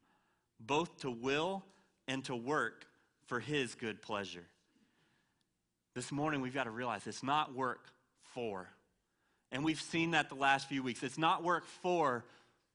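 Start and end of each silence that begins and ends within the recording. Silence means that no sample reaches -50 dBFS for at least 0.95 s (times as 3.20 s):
4.44–5.96 s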